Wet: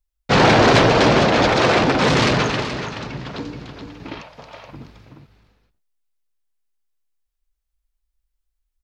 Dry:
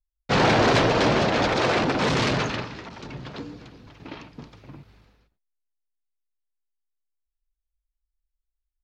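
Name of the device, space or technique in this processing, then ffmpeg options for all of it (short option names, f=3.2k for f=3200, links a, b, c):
ducked delay: -filter_complex "[0:a]asplit=3[a][b][c];[b]adelay=426,volume=-7dB[d];[c]apad=whole_len=408482[e];[d][e]sidechaincompress=threshold=-24dB:ratio=3:attack=16:release=1480[f];[a][f]amix=inputs=2:normalize=0,asettb=1/sr,asplit=3[g][h][i];[g]atrim=end=4.214[j];[h]atrim=start=4.21:end=4.73,asetpts=PTS-STARTPTS,afade=t=in:d=0.004:c=qsin,afade=t=out:st=0.516:d=0.004:c=qsin,lowshelf=f=430:t=q:w=3:g=-9.5[k];[i]atrim=start=4.726[l];[j][k]acrossfade=d=0.004:c1=hsin:c2=qsin[m];[m][l]acrossfade=d=0.004:c1=qsin:c2=hsin,volume=6dB"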